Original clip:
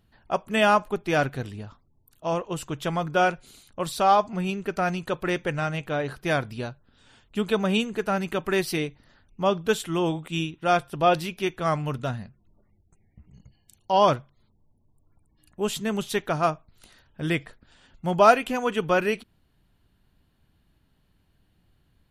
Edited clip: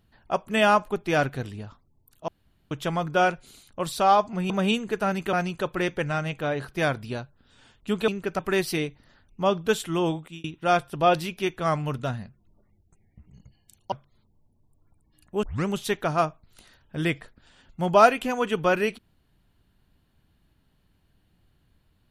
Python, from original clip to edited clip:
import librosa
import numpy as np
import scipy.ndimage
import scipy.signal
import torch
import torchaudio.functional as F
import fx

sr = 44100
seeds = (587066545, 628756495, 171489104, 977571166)

y = fx.edit(x, sr, fx.room_tone_fill(start_s=2.28, length_s=0.43),
    fx.swap(start_s=4.5, length_s=0.31, other_s=7.56, other_length_s=0.83),
    fx.fade_out_span(start_s=10.11, length_s=0.33),
    fx.cut(start_s=13.92, length_s=0.25),
    fx.tape_start(start_s=15.68, length_s=0.25), tone=tone)